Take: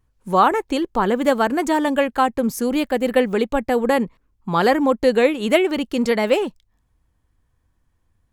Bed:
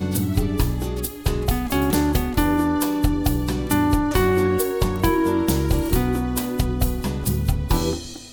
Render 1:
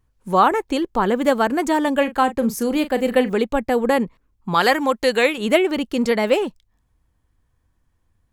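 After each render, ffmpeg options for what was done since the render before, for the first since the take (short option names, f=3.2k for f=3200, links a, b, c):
-filter_complex "[0:a]asettb=1/sr,asplit=3[a][b][c];[a]atrim=end=1.974[d];[b]atrim=start=1.97:end=3.31,asetpts=PTS-STARTPTS,afade=t=in:d=0.004:c=qsin,afade=t=out:st=1.336:d=0.004:c=qsin,asplit=2[e][f];[f]adelay=39,volume=-12dB[g];[e][g]amix=inputs=2:normalize=0,atrim=end_sample=59094[h];[c]atrim=start=3.306[i];[d][h]acrossfade=d=0.004:c1=hsin:c2=qsin[j];[j][i]acrossfade=d=0.004:c1=qsin:c2=hsin,asettb=1/sr,asplit=3[k][l][m];[k]atrim=end=4.544[n];[l]atrim=start=4.54:end=5.38,asetpts=PTS-STARTPTS,afade=t=in:d=0.004:c=qsin,afade=t=out:st=0.836:d=0.004:c=qsin,tiltshelf=f=760:g=-6.5[o];[m]atrim=start=5.376[p];[n][o]acrossfade=d=0.004:c1=hsin:c2=qsin[q];[q][p]acrossfade=d=0.004:c1=qsin:c2=hsin"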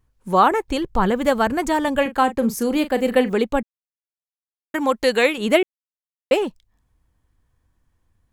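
-filter_complex "[0:a]asettb=1/sr,asplit=3[a][b][c];[a]atrim=end=0.684[d];[b]atrim=start=0.68:end=2.06,asetpts=PTS-STARTPTS,afade=t=in:d=0.004:c=qsin,afade=t=out:st=1.376:d=0.004:c=qsin,lowshelf=f=180:t=q:w=1.5:g=11[e];[c]atrim=start=2.056[f];[d][e]acrossfade=d=0.004:c1=hsin:c2=qsin[g];[g][f]acrossfade=d=0.004:c1=qsin:c2=hsin,asplit=5[h][i][j][k][l];[h]atrim=end=3.63,asetpts=PTS-STARTPTS,afade=t=out:st=3.626:d=0.004:c=hsin[m];[i]atrim=start=3.63:end=4.74,asetpts=PTS-STARTPTS,volume=0[n];[j]atrim=start=4.74:end=5.63,asetpts=PTS-STARTPTS,afade=t=in:d=0.004:c=hsin,afade=t=out:st=0.886:d=0.004:c=hsin[o];[k]atrim=start=5.63:end=6.31,asetpts=PTS-STARTPTS,volume=0[p];[l]atrim=start=6.31,asetpts=PTS-STARTPTS,afade=t=in:d=0.004:c=hsin[q];[m][n][o][p][q]concat=n=5:v=0:a=1"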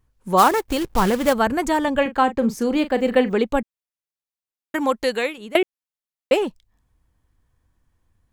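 -filter_complex "[0:a]asplit=3[a][b][c];[a]afade=t=out:st=0.37:d=0.02[d];[b]acrusher=bits=3:mode=log:mix=0:aa=0.000001,afade=t=in:st=0.37:d=0.02,afade=t=out:st=1.32:d=0.02[e];[c]afade=t=in:st=1.32:d=0.02[f];[d][e][f]amix=inputs=3:normalize=0,asettb=1/sr,asplit=3[g][h][i];[g]atrim=end=1.854[j];[h]atrim=start=1.85:end=3.46,asetpts=PTS-STARTPTS,afade=t=in:d=0.004:c=qsin,afade=t=out:st=1.606:d=0.004:c=qsin,equalizer=f=12k:t=o:w=1:g=-12[k];[i]atrim=start=3.456[l];[j][k]acrossfade=d=0.004:c1=hsin:c2=qsin[m];[m][l]acrossfade=d=0.004:c1=qsin:c2=hsin,asplit=2[n][o];[n]atrim=end=5.55,asetpts=PTS-STARTPTS,afade=t=out:st=4.81:d=0.74:silence=0.0841395[p];[o]atrim=start=5.55,asetpts=PTS-STARTPTS,afade=t=in:d=0.004:c=hsin:silence=0.0841395[q];[p][q]concat=n=2:v=0:a=1"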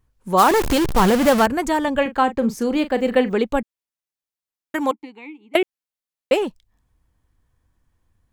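-filter_complex "[0:a]asettb=1/sr,asplit=3[a][b][c];[a]atrim=end=0.484[d];[b]atrim=start=0.48:end=1.46,asetpts=PTS-STARTPTS,afade=t=in:d=0.004:c=qsin,afade=t=out:st=0.976:d=0.004:c=qsin,aeval=exprs='val(0)+0.5*0.141*sgn(val(0))':c=same[e];[c]atrim=start=1.456[f];[d][e]acrossfade=d=0.004:c1=hsin:c2=qsin[g];[g][f]acrossfade=d=0.004:c1=qsin:c2=hsin,asettb=1/sr,asplit=3[h][i][j];[h]atrim=end=4.914[k];[i]atrim=start=4.91:end=5.54,asetpts=PTS-STARTPTS,afade=t=in:d=0.004:c=qsin,afade=t=out:st=0.626:d=0.004:c=qsin,asplit=3[l][m][n];[l]bandpass=f=300:t=q:w=8,volume=0dB[o];[m]bandpass=f=870:t=q:w=8,volume=-6dB[p];[n]bandpass=f=2.24k:t=q:w=8,volume=-9dB[q];[o][p][q]amix=inputs=3:normalize=0[r];[j]atrim=start=5.536[s];[k][r]acrossfade=d=0.004:c1=hsin:c2=qsin[t];[t][s]acrossfade=d=0.004:c1=qsin:c2=hsin"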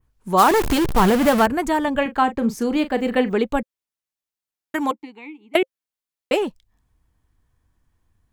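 -af "bandreject=f=530:w=12,adynamicequalizer=threshold=0.01:dfrequency=5800:dqfactor=0.88:tfrequency=5800:tqfactor=0.88:attack=5:release=100:ratio=0.375:range=2:mode=cutabove:tftype=bell"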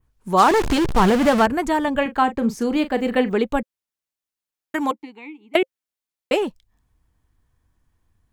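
-filter_complex "[0:a]acrossover=split=8900[a][b];[b]acompressor=threshold=-45dB:ratio=4:attack=1:release=60[c];[a][c]amix=inputs=2:normalize=0"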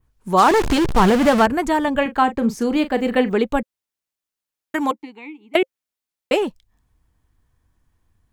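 -af "volume=1.5dB,alimiter=limit=-2dB:level=0:latency=1"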